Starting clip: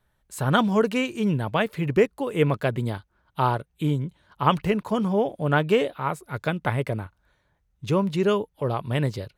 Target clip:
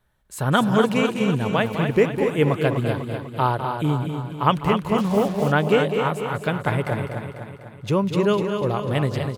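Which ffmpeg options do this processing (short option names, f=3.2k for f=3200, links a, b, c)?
-filter_complex "[0:a]asplit=2[a][b];[b]aecho=0:1:248|496|744|992|1240|1488|1736:0.447|0.241|0.13|0.0703|0.038|0.0205|0.0111[c];[a][c]amix=inputs=2:normalize=0,asettb=1/sr,asplit=3[d][e][f];[d]atrim=end=4.984[g];[e]atrim=start=4.98:end=5.52,asetpts=PTS-STARTPTS,afade=t=in:d=0.004:c=qsin,afade=t=out:st=0.536:d=0.004:c=qsin,acrusher=bits=5:mix=0:aa=0.5[h];[f]atrim=start=5.516[i];[g][h]acrossfade=d=0.004:c1=hsin:c2=qsin[j];[j][i]acrossfade=d=0.004:c1=qsin:c2=hsin,asplit=2[k][l];[l]aecho=0:1:203:0.335[m];[k][m]amix=inputs=2:normalize=0,volume=1.5dB"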